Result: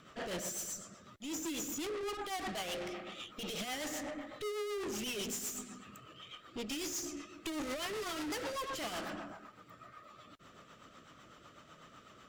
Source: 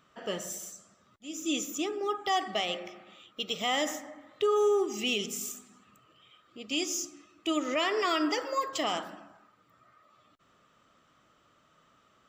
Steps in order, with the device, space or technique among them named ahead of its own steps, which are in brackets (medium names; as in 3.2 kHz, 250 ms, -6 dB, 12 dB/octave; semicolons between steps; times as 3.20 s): overdriven rotary cabinet (valve stage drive 48 dB, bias 0.4; rotary cabinet horn 8 Hz); trim +12 dB